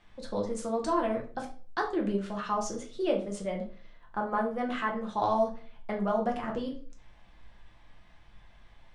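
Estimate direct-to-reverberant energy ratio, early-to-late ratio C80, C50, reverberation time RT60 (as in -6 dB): 0.0 dB, 14.5 dB, 9.0 dB, 0.40 s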